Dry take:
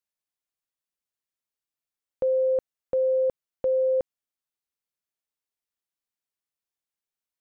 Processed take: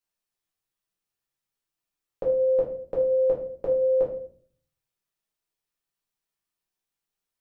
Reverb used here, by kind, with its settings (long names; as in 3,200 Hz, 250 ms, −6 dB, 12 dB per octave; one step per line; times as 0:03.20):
rectangular room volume 53 cubic metres, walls mixed, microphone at 1.2 metres
level −2 dB